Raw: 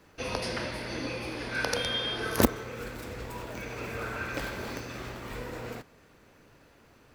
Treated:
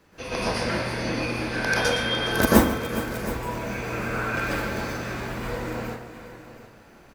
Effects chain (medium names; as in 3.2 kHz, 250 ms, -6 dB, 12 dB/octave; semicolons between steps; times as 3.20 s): multi-tap echo 143/416/722 ms -18/-14/-14.5 dB; plate-style reverb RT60 0.52 s, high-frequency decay 0.6×, pre-delay 110 ms, DRR -7.5 dB; trim -1 dB